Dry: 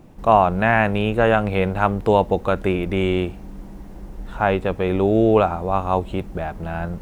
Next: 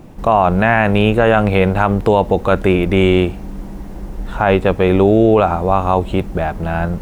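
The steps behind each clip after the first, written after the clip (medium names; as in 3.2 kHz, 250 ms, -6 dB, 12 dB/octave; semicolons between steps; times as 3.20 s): loudness maximiser +9 dB; trim -1 dB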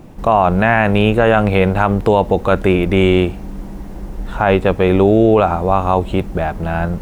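no audible change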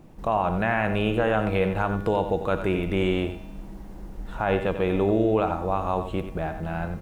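feedback comb 160 Hz, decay 1.1 s, mix 70%; delay 91 ms -10 dB; trim -1.5 dB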